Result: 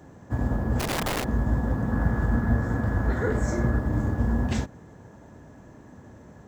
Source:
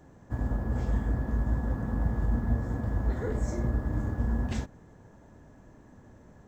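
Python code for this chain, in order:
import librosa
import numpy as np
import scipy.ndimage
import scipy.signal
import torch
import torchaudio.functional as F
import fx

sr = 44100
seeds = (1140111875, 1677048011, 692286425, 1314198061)

y = scipy.signal.sosfilt(scipy.signal.butter(2, 64.0, 'highpass', fs=sr, output='sos'), x)
y = fx.overflow_wrap(y, sr, gain_db=29.0, at=(0.79, 1.23), fade=0.02)
y = fx.peak_eq(y, sr, hz=1500.0, db=7.0, octaves=0.64, at=(1.92, 3.79))
y = y * librosa.db_to_amplitude(6.5)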